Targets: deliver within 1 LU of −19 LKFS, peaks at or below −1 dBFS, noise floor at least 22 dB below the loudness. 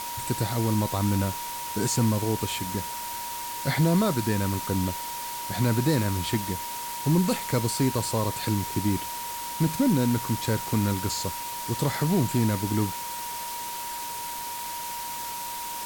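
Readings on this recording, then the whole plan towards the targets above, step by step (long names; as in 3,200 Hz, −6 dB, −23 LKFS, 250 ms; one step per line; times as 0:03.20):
interfering tone 950 Hz; level of the tone −34 dBFS; background noise floor −34 dBFS; target noise floor −49 dBFS; integrated loudness −27.0 LKFS; sample peak −13.0 dBFS; target loudness −19.0 LKFS
→ notch filter 950 Hz, Q 30
broadband denoise 15 dB, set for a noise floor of −34 dBFS
level +8 dB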